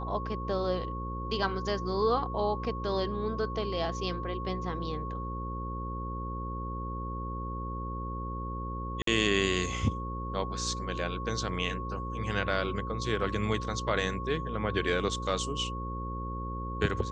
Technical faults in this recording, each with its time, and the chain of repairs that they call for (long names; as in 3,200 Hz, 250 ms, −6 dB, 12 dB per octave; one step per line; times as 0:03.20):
mains buzz 60 Hz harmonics 9 −37 dBFS
whistle 1,100 Hz −38 dBFS
0:09.02–0:09.07: drop-out 53 ms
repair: notch filter 1,100 Hz, Q 30
hum removal 60 Hz, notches 9
repair the gap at 0:09.02, 53 ms